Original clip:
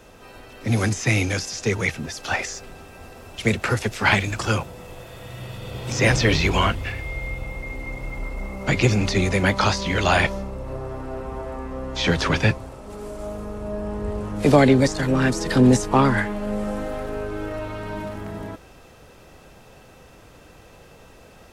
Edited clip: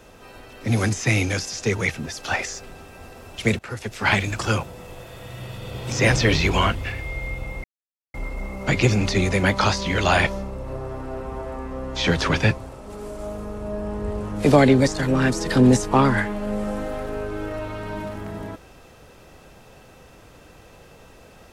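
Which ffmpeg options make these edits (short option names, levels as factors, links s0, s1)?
-filter_complex "[0:a]asplit=4[s0][s1][s2][s3];[s0]atrim=end=3.59,asetpts=PTS-STARTPTS,afade=t=out:st=3.586:d=0.004:c=hsin:silence=0.125893[s4];[s1]atrim=start=3.59:end=7.64,asetpts=PTS-STARTPTS,afade=t=in:d=0.63:silence=0.125893,afade=t=out:st=4.046:d=0.004:c=hsin[s5];[s2]atrim=start=7.64:end=8.14,asetpts=PTS-STARTPTS,volume=0[s6];[s3]atrim=start=8.14,asetpts=PTS-STARTPTS,afade=t=in:d=0.004:c=hsin[s7];[s4][s5][s6][s7]concat=n=4:v=0:a=1"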